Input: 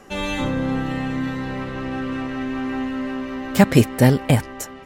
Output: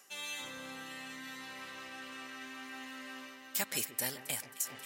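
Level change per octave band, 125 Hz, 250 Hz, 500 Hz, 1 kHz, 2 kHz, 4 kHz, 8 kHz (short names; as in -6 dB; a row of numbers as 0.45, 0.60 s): -36.0, -29.5, -25.5, -19.5, -13.0, -9.0, -3.0 dB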